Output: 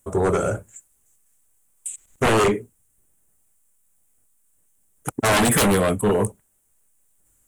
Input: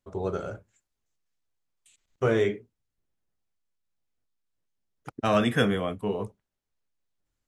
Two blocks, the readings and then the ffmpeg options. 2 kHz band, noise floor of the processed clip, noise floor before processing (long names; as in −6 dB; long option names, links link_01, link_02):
+8.0 dB, −65 dBFS, −85 dBFS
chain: -af "highshelf=frequency=6400:width_type=q:width=3:gain=12,aeval=exprs='0.376*sin(PI/2*5.62*val(0)/0.376)':channel_layout=same,volume=-5.5dB"